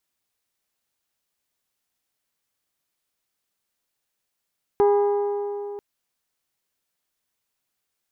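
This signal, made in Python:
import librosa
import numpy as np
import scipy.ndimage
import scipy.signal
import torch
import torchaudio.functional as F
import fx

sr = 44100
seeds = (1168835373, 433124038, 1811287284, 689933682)

y = fx.strike_metal(sr, length_s=0.99, level_db=-14.0, body='bell', hz=408.0, decay_s=3.36, tilt_db=7.5, modes=6)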